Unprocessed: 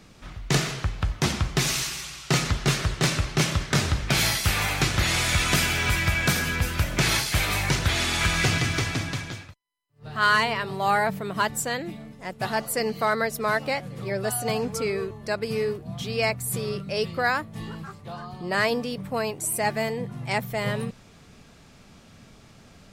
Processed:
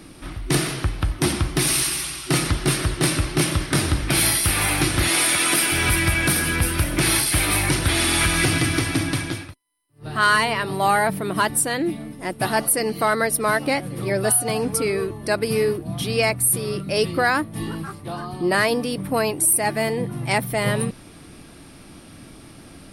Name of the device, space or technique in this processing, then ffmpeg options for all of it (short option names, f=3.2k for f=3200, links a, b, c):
soft clipper into limiter: -filter_complex "[0:a]asettb=1/sr,asplit=3[a][b][c];[a]atrim=end=5.084[d];[b]atrim=start=5.08:end=5.72,asetpts=PTS-STARTPTS,afade=t=in:d=0.004:c=qsin,afade=t=out:st=0.636:d=0.004:c=qsin,highpass=270[e];[c]atrim=start=5.716[f];[d][e]acrossfade=d=0.004:c1=hsin:c2=qsin[g];[g][f]acrossfade=d=0.004:c1=qsin:c2=hsin,superequalizer=6b=2.82:15b=0.562:16b=3.98,asoftclip=type=tanh:threshold=-9dB,alimiter=limit=-15.5dB:level=0:latency=1:release=454,volume=6dB"